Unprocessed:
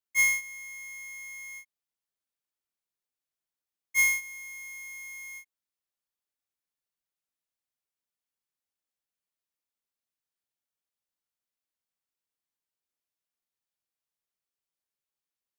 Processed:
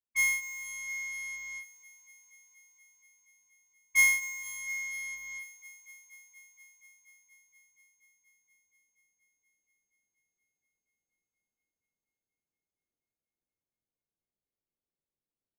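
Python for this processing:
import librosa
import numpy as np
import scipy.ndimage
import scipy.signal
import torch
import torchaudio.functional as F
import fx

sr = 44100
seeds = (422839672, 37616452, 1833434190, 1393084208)

y = fx.halfwave_hold(x, sr)
y = fx.rider(y, sr, range_db=4, speed_s=0.5)
y = fx.env_lowpass(y, sr, base_hz=450.0, full_db=-36.0)
y = fx.echo_thinned(y, sr, ms=238, feedback_pct=83, hz=190.0, wet_db=-17.0)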